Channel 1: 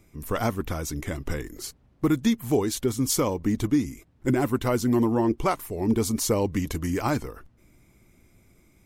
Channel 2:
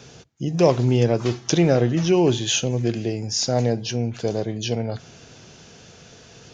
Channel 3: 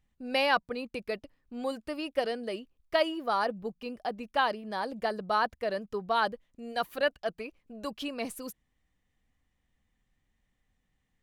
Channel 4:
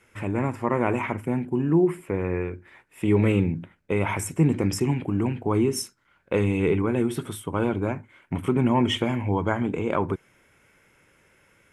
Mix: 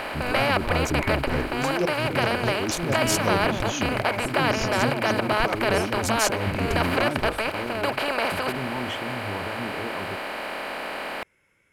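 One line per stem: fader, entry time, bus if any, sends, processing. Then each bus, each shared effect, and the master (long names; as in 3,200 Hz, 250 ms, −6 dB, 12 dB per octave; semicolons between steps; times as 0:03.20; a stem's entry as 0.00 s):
+1.5 dB, 0.00 s, no send, adaptive Wiener filter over 15 samples; high-shelf EQ 8,200 Hz −9.5 dB; compressor whose output falls as the input rises −30 dBFS, ratio −1
−8.5 dB, 1.20 s, no send, shaped tremolo saw up 4.6 Hz, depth 95%
−4.0 dB, 0.00 s, no send, compressor on every frequency bin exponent 0.2
−8.0 dB, 0.00 s, no send, brickwall limiter −15 dBFS, peak gain reduction 6.5 dB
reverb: not used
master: parametric band 2,200 Hz +6.5 dB 0.22 octaves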